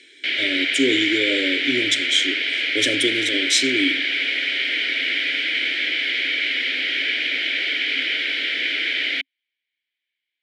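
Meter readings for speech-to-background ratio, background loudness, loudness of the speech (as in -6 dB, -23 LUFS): -1.5 dB, -20.5 LUFS, -22.0 LUFS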